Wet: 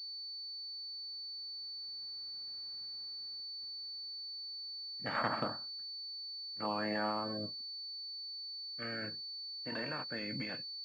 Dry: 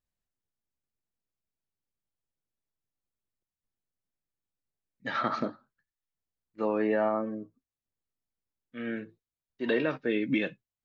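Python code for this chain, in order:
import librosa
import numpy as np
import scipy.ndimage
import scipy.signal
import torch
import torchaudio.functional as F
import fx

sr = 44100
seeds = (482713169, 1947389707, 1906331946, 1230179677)

p1 = fx.spec_clip(x, sr, under_db=16)
p2 = fx.doppler_pass(p1, sr, speed_mps=5, closest_m=3.1, pass_at_s=2.68)
p3 = fx.peak_eq(p2, sr, hz=390.0, db=-14.0, octaves=0.26)
p4 = fx.over_compress(p3, sr, threshold_db=-59.0, ratio=-1.0)
p5 = p3 + (p4 * librosa.db_to_amplitude(-2.0))
p6 = scipy.signal.sosfilt(scipy.signal.butter(2, 80.0, 'highpass', fs=sr, output='sos'), p5)
p7 = fx.pwm(p6, sr, carrier_hz=4500.0)
y = p7 * librosa.db_to_amplitude(9.0)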